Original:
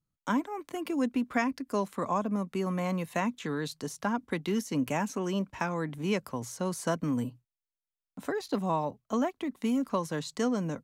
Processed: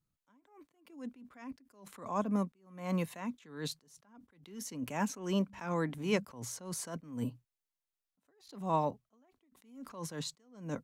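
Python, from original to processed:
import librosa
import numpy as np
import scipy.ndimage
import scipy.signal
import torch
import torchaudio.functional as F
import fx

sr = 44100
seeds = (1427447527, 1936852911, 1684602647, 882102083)

y = fx.hum_notches(x, sr, base_hz=50, count=4, at=(5.49, 6.23), fade=0.02)
y = fx.attack_slew(y, sr, db_per_s=110.0)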